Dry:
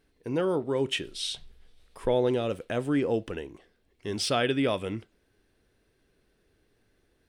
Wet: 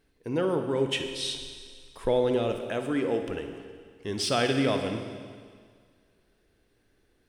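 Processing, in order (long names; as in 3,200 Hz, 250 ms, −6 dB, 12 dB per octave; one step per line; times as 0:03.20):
0:02.53–0:03.22: high-pass filter 260 Hz 6 dB per octave
convolution reverb RT60 1.9 s, pre-delay 46 ms, DRR 6 dB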